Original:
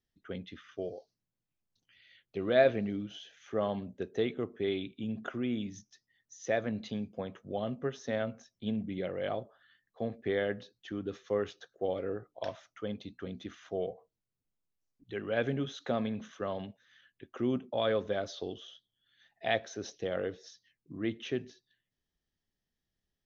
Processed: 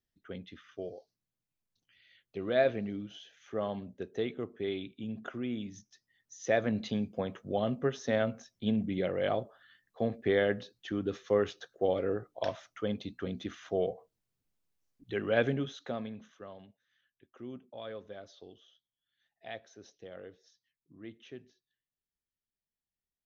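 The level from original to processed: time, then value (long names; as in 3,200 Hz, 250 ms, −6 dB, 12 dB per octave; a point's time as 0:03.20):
0:05.68 −2.5 dB
0:06.75 +4 dB
0:15.37 +4 dB
0:15.85 −4 dB
0:16.58 −13 dB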